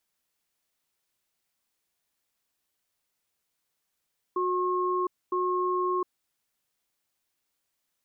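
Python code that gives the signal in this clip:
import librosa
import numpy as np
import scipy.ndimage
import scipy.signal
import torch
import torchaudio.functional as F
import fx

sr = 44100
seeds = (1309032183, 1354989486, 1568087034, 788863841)

y = fx.cadence(sr, length_s=1.74, low_hz=364.0, high_hz=1080.0, on_s=0.71, off_s=0.25, level_db=-27.0)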